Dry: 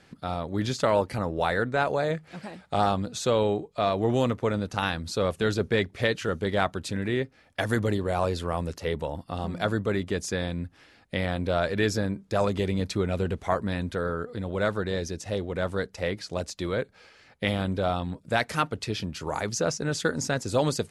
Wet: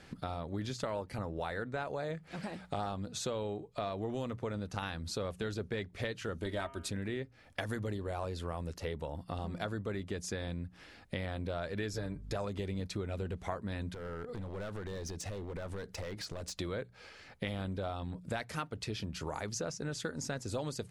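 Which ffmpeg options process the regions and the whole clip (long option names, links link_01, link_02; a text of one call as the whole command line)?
ffmpeg -i in.wav -filter_complex "[0:a]asettb=1/sr,asplit=3[link_01][link_02][link_03];[link_01]atrim=end=6.384[link_04];[link_02]atrim=start=6.38:end=6.9,asetpts=PTS-STARTPTS,afade=type=in:duration=0.004:curve=qsin,afade=type=out:start_time=0.516:duration=0.004:curve=qsin,equalizer=frequency=10000:width_type=o:width=0.63:gain=6,aecho=1:1:3.2:0.58,atrim=end_sample=22932,bandreject=frequency=135.4:width_type=h:width=4,bandreject=frequency=270.8:width_type=h:width=4,bandreject=frequency=406.2:width_type=h:width=4,bandreject=frequency=541.6:width_type=h:width=4,bandreject=frequency=677:width_type=h:width=4,bandreject=frequency=812.4:width_type=h:width=4,bandreject=frequency=947.8:width_type=h:width=4,bandreject=frequency=1083.2:width_type=h:width=4,bandreject=frequency=1218.6:width_type=h:width=4,bandreject=frequency=1354:width_type=h:width=4,bandreject=frequency=1489.4:width_type=h:width=4,bandreject=frequency=1624.8:width_type=h:width=4,bandreject=frequency=1760.2:width_type=h:width=4,bandreject=frequency=1895.6:width_type=h:width=4,bandreject=frequency=2031:width_type=h:width=4,bandreject=frequency=2166.4:width_type=h:width=4,bandreject=frequency=2301.8:width_type=h:width=4,bandreject=frequency=2437.2:width_type=h:width=4,bandreject=frequency=2572.6:width_type=h:width=4,bandreject=frequency=2708:width_type=h:width=4,bandreject=frequency=2843.4:width_type=h:width=4,bandreject=frequency=2978.8:width_type=h:width=4,bandreject=frequency=3114.2:width_type=h:width=4[link_05];[link_03]atrim=start=6.896[link_06];[link_04][link_05]acrossfade=duration=0.004:curve1=hsin:curve2=qsin[link_07];[link_07][link_06]acrossfade=duration=0.004:curve1=qsin:curve2=hsin,asettb=1/sr,asplit=3[link_08][link_09][link_10];[link_08]atrim=end=11.934[link_11];[link_09]atrim=start=11.93:end=12.36,asetpts=PTS-STARTPTS,afade=type=in:duration=0.004:curve=qsin,afade=type=out:start_time=0.426:duration=0.004:curve=qsin,equalizer=frequency=260:width_type=o:width=0.36:gain=-7,aecho=1:1:6.9:0.64,atrim=end_sample=18963,aeval=exprs='val(0)+0.00562*(sin(2*PI*50*n/s)+sin(2*PI*2*50*n/s)/2+sin(2*PI*3*50*n/s)/3+sin(2*PI*4*50*n/s)/4+sin(2*PI*5*50*n/s)/5)':channel_layout=same[link_12];[link_10]atrim=start=12.356[link_13];[link_11][link_12]acrossfade=duration=0.004:curve1=hsin:curve2=qsin[link_14];[link_14][link_13]acrossfade=duration=0.004:curve1=qsin:curve2=hsin,asettb=1/sr,asplit=3[link_15][link_16][link_17];[link_15]atrim=end=13.944[link_18];[link_16]atrim=start=13.94:end=16.55,asetpts=PTS-STARTPTS,afade=type=in:duration=0.004:curve=qsin,afade=type=out:start_time=2.606:duration=0.004:curve=qsin,acompressor=threshold=-36dB:ratio=5:attack=3.2:release=140:knee=1:detection=peak,asoftclip=type=hard:threshold=-36.5dB[link_19];[link_17]atrim=start=16.546[link_20];[link_18][link_19]acrossfade=duration=0.004:curve1=hsin:curve2=qsin[link_21];[link_21][link_20]acrossfade=duration=0.004:curve1=qsin:curve2=hsin,lowshelf=frequency=66:gain=9,bandreject=frequency=60:width_type=h:width=6,bandreject=frequency=120:width_type=h:width=6,bandreject=frequency=180:width_type=h:width=6,acompressor=threshold=-38dB:ratio=4,volume=1dB" out.wav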